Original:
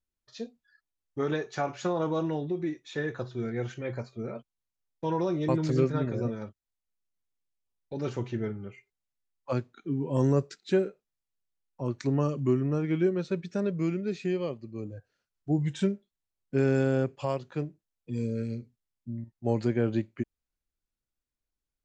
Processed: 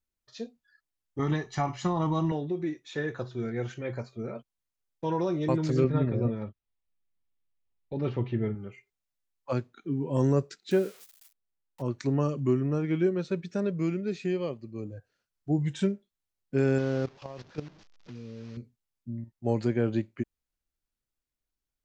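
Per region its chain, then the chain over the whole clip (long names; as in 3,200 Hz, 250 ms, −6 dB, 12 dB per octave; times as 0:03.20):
0:01.19–0:02.32: low-shelf EQ 110 Hz +11.5 dB + comb filter 1 ms, depth 64%
0:05.84–0:08.55: low-pass filter 3,800 Hz 24 dB per octave + low-shelf EQ 210 Hz +6 dB + notch filter 1,500 Hz, Q 9.1
0:10.71–0:11.82: spike at every zero crossing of −32 dBFS + high-shelf EQ 5,900 Hz −5.5 dB + one half of a high-frequency compander decoder only
0:16.78–0:18.57: linear delta modulator 32 kbit/s, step −38.5 dBFS + output level in coarse steps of 14 dB
whole clip: no processing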